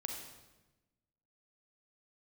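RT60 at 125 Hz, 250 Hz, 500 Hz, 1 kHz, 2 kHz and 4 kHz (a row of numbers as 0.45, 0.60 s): 1.4, 1.4, 1.2, 1.0, 0.95, 0.90 s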